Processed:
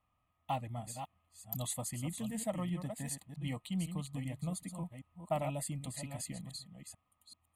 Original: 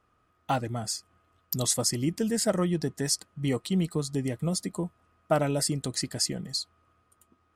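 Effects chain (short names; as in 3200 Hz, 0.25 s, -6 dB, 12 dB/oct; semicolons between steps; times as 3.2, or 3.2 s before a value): reverse delay 0.386 s, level -8 dB; fixed phaser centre 1500 Hz, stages 6; gain -7 dB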